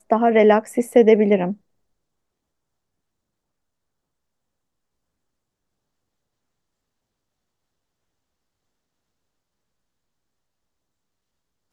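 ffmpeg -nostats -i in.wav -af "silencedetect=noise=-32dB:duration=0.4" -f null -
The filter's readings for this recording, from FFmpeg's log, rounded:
silence_start: 1.53
silence_end: 11.73 | silence_duration: 10.19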